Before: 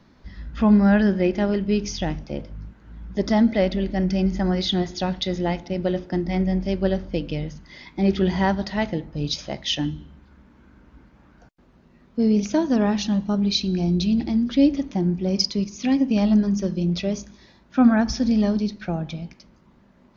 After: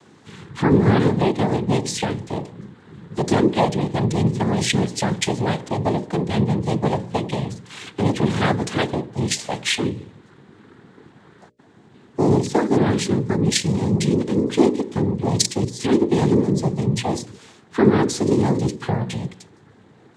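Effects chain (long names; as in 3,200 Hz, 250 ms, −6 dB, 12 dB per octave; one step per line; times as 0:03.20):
cochlear-implant simulation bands 6
in parallel at +1.5 dB: downward compressor, threshold −28 dBFS, peak gain reduction 18 dB
on the sum: mains-hum notches 60/120/180/240/300/360/420/480/540/600 Hz
0:18.83–0:19.25: double-tracking delay 17 ms −6 dB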